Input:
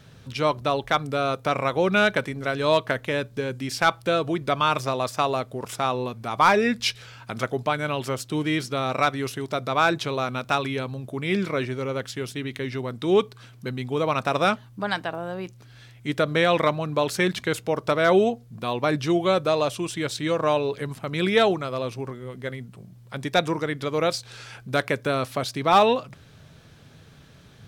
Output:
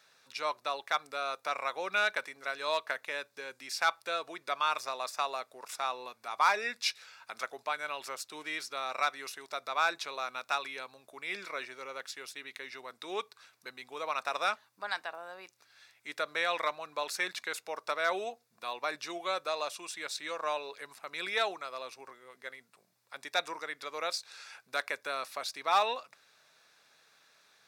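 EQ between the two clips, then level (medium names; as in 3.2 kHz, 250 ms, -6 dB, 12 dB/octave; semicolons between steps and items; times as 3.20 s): high-pass 850 Hz 12 dB/octave; peaking EQ 4.9 kHz +2 dB; band-stop 3.1 kHz, Q 6.6; -6.5 dB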